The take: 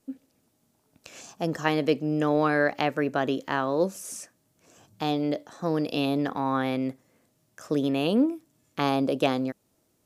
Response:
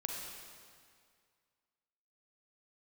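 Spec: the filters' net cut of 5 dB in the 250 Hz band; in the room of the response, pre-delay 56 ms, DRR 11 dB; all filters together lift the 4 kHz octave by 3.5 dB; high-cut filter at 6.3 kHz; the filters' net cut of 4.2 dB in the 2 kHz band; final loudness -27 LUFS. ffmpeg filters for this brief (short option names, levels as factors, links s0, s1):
-filter_complex "[0:a]lowpass=6300,equalizer=f=250:t=o:g=-6,equalizer=f=2000:t=o:g=-7.5,equalizer=f=4000:t=o:g=8,asplit=2[s0][s1];[1:a]atrim=start_sample=2205,adelay=56[s2];[s1][s2]afir=irnorm=-1:irlink=0,volume=0.237[s3];[s0][s3]amix=inputs=2:normalize=0,volume=1.26"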